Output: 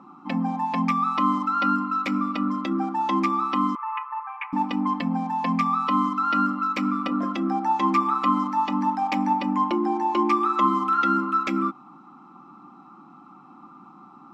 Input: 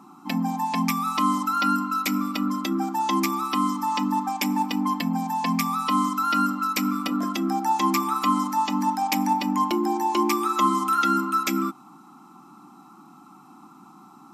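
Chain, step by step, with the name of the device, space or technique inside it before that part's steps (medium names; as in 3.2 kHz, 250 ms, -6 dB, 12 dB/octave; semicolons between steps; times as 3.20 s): 3.75–4.53 s: elliptic band-pass 960–2600 Hz, stop band 60 dB; inside a cardboard box (low-pass 2.7 kHz 12 dB/octave; small resonant body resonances 540/1200 Hz, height 11 dB, ringing for 90 ms)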